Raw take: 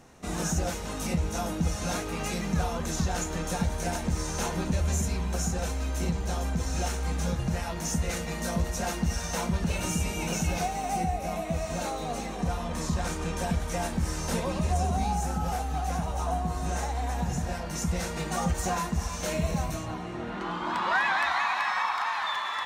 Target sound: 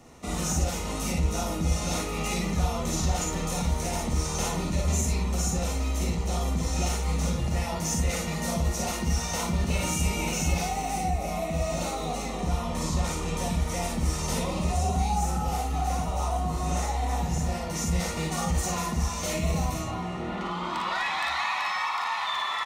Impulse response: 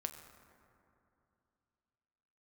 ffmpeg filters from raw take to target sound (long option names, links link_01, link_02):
-filter_complex "[0:a]acrossover=split=120|2000[link_01][link_02][link_03];[link_02]alimiter=level_in=2.5dB:limit=-24dB:level=0:latency=1:release=73,volume=-2.5dB[link_04];[link_01][link_04][link_03]amix=inputs=3:normalize=0,asuperstop=centerf=1600:order=4:qfactor=6.3,aecho=1:1:44|56:0.501|0.668,volume=1dB"